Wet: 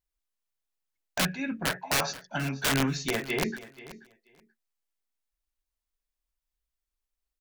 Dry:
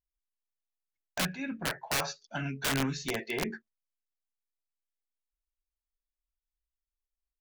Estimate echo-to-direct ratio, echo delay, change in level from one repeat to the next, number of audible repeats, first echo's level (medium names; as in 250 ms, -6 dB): -17.0 dB, 482 ms, -16.0 dB, 2, -17.0 dB